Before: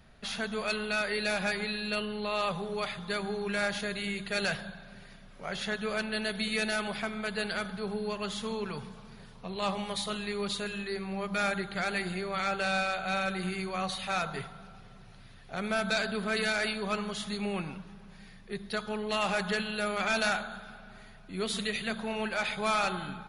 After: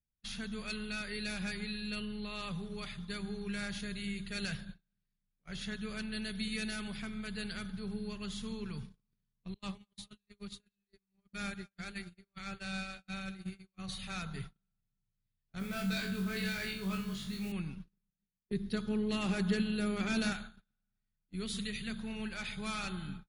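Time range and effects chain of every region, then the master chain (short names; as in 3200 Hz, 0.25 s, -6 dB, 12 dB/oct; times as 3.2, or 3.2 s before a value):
9.54–13.88 expander -28 dBFS + feedback echo 0.203 s, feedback 47%, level -16.5 dB
15.59–17.52 LPF 3800 Hz 6 dB/oct + modulation noise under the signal 20 dB + flutter echo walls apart 3.6 m, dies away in 0.35 s
18.1–20.33 bell 330 Hz +10.5 dB 2.1 oct + expander -40 dBFS
whole clip: passive tone stack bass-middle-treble 6-0-2; gate -58 dBFS, range -35 dB; tilt shelf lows +3.5 dB, about 730 Hz; gain +12.5 dB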